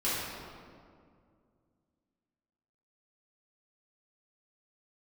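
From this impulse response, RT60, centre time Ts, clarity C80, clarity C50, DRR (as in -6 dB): 2.2 s, 0.131 s, -0.5 dB, -3.0 dB, -11.5 dB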